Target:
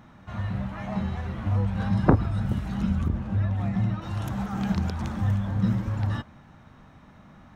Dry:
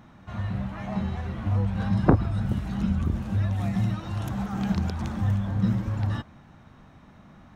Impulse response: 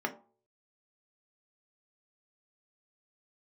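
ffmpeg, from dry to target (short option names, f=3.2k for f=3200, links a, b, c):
-filter_complex "[0:a]asettb=1/sr,asplit=3[a][b][c];[a]atrim=end=3.084[d];[b]atrim=start=3.08:end=4.02,asetpts=PTS-STARTPTS,afade=t=in:d=0.004:c=qsin,afade=t=out:st=0.936:d=0.004:c=qsin,aemphasis=mode=reproduction:type=75kf[e];[c]atrim=start=4.016[f];[d][e]acrossfade=d=0.004:c1=hsin:c2=qsin[g];[g][f]acrossfade=d=0.004:c1=qsin:c2=hsin,asplit=2[h][i];[i]highpass=390,lowpass=5.3k[j];[1:a]atrim=start_sample=2205[k];[j][k]afir=irnorm=-1:irlink=0,volume=-20.5dB[l];[h][l]amix=inputs=2:normalize=0"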